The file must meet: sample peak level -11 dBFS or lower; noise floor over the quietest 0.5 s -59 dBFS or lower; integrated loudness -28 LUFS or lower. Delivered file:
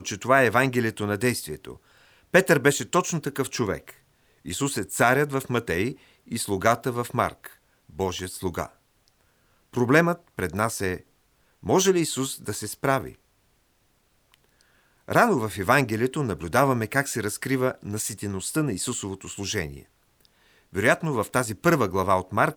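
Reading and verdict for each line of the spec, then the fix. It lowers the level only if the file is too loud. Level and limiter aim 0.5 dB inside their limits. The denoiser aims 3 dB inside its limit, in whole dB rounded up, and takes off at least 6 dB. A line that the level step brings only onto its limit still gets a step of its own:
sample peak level -4.5 dBFS: fail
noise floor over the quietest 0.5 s -66 dBFS: pass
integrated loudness -24.5 LUFS: fail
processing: trim -4 dB; peak limiter -11.5 dBFS

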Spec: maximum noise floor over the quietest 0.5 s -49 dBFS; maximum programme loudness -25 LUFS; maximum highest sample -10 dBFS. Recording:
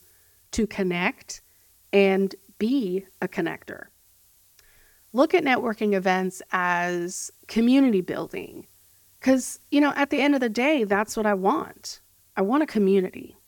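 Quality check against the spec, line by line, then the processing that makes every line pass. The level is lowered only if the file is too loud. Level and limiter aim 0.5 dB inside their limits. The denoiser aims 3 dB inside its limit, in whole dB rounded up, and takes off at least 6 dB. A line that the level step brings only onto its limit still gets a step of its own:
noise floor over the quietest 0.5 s -59 dBFS: pass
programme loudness -24.0 LUFS: fail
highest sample -5.5 dBFS: fail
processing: trim -1.5 dB; peak limiter -10.5 dBFS

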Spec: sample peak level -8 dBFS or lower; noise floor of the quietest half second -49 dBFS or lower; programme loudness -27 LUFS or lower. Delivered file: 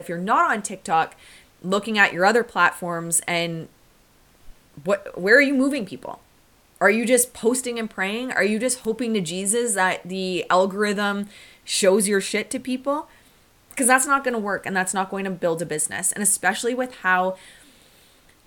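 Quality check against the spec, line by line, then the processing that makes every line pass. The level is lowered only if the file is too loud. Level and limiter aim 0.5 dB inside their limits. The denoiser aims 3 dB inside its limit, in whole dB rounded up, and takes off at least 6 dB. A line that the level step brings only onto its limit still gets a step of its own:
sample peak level -2.5 dBFS: fail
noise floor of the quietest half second -57 dBFS: pass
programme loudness -21.5 LUFS: fail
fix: trim -6 dB

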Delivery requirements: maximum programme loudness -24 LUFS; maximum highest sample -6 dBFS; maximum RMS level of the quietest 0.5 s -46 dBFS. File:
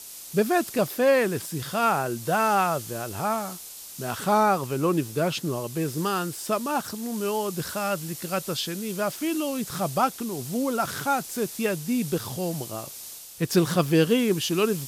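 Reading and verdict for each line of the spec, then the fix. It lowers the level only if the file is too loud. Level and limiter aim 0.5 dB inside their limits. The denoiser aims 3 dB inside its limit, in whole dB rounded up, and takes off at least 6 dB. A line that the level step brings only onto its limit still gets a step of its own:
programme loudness -26.0 LUFS: pass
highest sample -8.5 dBFS: pass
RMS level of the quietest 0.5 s -42 dBFS: fail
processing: noise reduction 7 dB, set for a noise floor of -42 dBFS

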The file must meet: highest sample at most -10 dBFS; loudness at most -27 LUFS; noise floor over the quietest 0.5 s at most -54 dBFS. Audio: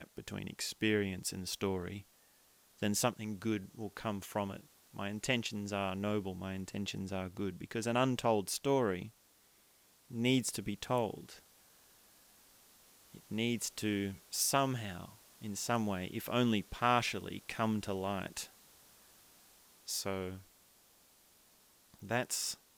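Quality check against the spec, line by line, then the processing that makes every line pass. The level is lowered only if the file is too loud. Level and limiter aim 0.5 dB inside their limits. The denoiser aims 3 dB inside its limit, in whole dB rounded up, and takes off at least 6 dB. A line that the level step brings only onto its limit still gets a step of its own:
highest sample -15.0 dBFS: pass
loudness -36.0 LUFS: pass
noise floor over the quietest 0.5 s -67 dBFS: pass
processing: none needed

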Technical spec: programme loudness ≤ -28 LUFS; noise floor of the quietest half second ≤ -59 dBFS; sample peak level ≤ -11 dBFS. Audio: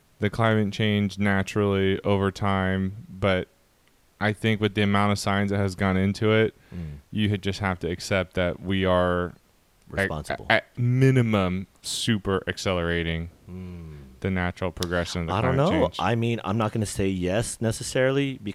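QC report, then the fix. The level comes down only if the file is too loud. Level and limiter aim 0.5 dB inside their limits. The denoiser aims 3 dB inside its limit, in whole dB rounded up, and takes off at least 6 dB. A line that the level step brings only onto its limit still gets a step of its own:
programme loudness -25.0 LUFS: fail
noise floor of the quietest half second -61 dBFS: pass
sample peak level -3.5 dBFS: fail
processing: trim -3.5 dB; peak limiter -11.5 dBFS

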